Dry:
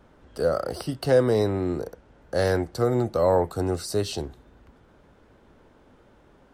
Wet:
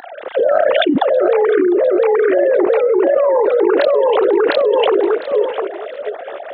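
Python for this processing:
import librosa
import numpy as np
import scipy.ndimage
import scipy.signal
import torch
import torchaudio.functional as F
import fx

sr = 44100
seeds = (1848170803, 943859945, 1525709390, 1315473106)

y = fx.sine_speech(x, sr)
y = fx.peak_eq(y, sr, hz=300.0, db=8.0, octaves=1.5)
y = fx.formant_shift(y, sr, semitones=3)
y = fx.echo_feedback(y, sr, ms=704, feedback_pct=16, wet_db=-5)
y = fx.env_flatten(y, sr, amount_pct=100)
y = y * 10.0 ** (-5.5 / 20.0)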